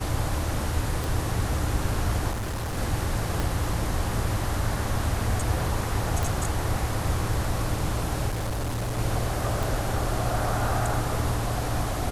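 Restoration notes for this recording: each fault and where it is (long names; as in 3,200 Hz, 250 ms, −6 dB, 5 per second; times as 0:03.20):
0:01.04: click
0:02.31–0:02.78: clipping −27 dBFS
0:03.40: click
0:06.23: click
0:08.28–0:08.99: clipping −25 dBFS
0:09.63: click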